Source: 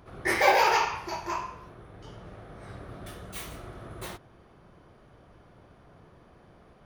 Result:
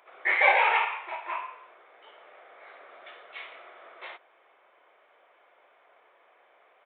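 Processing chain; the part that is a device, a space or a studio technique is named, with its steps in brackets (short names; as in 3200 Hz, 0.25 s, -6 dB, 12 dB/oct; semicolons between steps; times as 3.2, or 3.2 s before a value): musical greeting card (downsampling 8000 Hz; HPF 530 Hz 24 dB/oct; bell 2200 Hz +8.5 dB 0.42 oct); gain -1.5 dB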